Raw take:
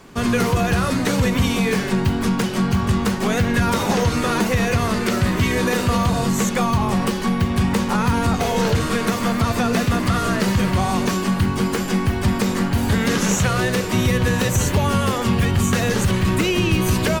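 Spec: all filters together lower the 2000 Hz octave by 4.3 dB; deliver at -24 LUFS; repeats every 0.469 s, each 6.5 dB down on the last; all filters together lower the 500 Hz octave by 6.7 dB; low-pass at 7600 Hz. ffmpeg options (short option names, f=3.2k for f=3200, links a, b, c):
-af "lowpass=7.6k,equalizer=f=500:t=o:g=-8.5,equalizer=f=2k:t=o:g=-5,aecho=1:1:469|938|1407|1876|2345|2814:0.473|0.222|0.105|0.0491|0.0231|0.0109,volume=-3.5dB"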